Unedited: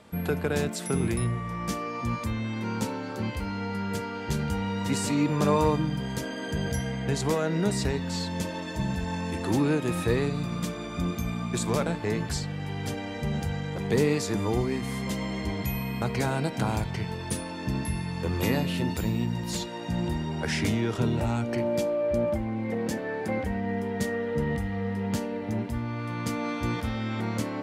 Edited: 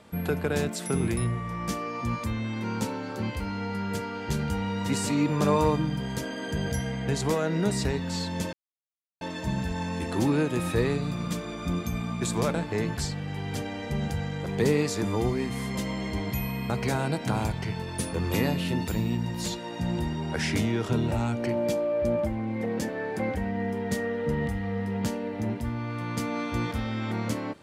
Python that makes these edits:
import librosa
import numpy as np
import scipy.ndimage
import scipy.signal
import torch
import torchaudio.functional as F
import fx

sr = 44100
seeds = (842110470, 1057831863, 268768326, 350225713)

y = fx.edit(x, sr, fx.insert_silence(at_s=8.53, length_s=0.68),
    fx.cut(start_s=17.45, length_s=0.77), tone=tone)